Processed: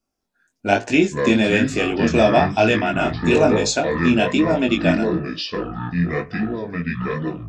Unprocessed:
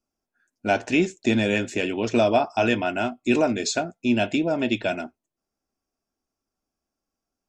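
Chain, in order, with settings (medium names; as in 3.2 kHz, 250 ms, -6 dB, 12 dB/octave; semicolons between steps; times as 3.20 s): ever faster or slower copies 202 ms, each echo -6 st, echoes 2, each echo -6 dB; chorus 1.1 Hz, delay 18.5 ms, depth 5.1 ms; trim +7.5 dB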